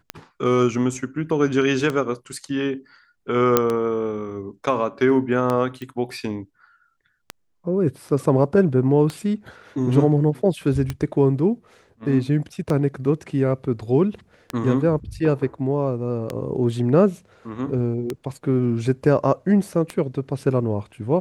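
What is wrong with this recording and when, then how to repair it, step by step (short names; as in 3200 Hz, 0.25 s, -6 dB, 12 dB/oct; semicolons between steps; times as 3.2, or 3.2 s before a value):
tick 33 1/3 rpm -11 dBFS
3.57 pop -1 dBFS
5.82 pop -21 dBFS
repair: de-click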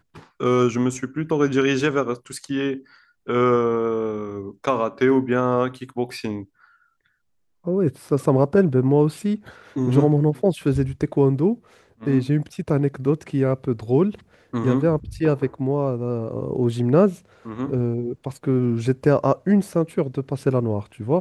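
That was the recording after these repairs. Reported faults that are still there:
none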